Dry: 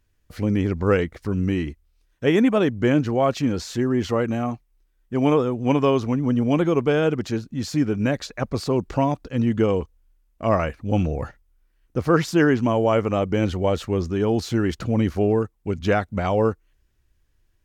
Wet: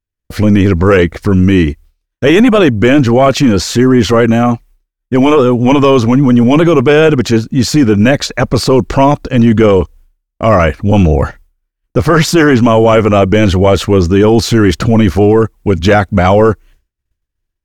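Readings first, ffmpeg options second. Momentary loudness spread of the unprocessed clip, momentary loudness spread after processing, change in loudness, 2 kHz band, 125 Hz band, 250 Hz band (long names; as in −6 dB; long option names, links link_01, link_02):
8 LU, 6 LU, +13.0 dB, +14.0 dB, +13.0 dB, +13.0 dB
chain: -af "agate=range=-33dB:threshold=-47dB:ratio=3:detection=peak,apsyclip=19dB,volume=-2dB"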